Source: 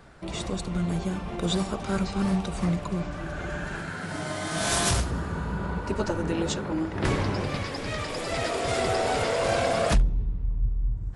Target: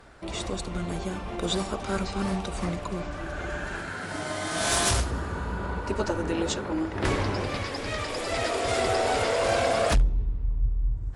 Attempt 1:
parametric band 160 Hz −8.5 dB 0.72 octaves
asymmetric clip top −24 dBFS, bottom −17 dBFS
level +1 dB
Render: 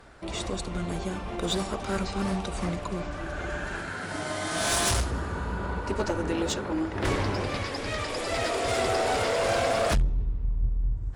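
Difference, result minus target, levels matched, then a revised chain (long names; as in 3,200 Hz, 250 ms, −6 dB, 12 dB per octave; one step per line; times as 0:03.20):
asymmetric clip: distortion +4 dB
parametric band 160 Hz −8.5 dB 0.72 octaves
asymmetric clip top −15.5 dBFS, bottom −17 dBFS
level +1 dB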